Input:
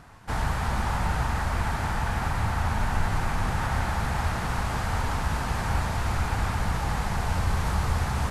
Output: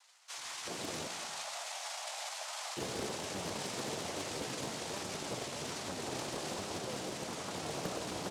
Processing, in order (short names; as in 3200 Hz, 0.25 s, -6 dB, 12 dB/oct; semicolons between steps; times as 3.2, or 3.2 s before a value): air absorption 250 m; fixed phaser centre 860 Hz, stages 6; noise vocoder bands 2; bands offset in time highs, lows 0.37 s, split 890 Hz; flange 1.2 Hz, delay 9.6 ms, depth 6.9 ms, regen +53%; 1.07–2.77 steep high-pass 630 Hz 48 dB/oct; reverb RT60 0.60 s, pre-delay 0.115 s, DRR 9 dB; Doppler distortion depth 0.79 ms; gain -1 dB